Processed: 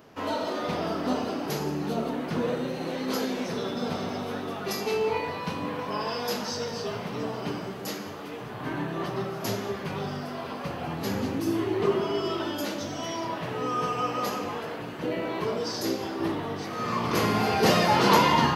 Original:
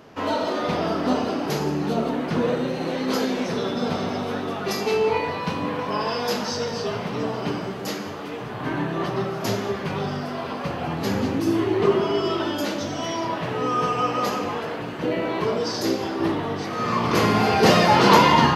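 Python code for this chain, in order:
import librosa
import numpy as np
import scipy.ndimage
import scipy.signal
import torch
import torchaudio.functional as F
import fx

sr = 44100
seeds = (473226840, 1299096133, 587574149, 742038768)

y = fx.high_shelf(x, sr, hz=11000.0, db=11.5)
y = y * librosa.db_to_amplitude(-5.5)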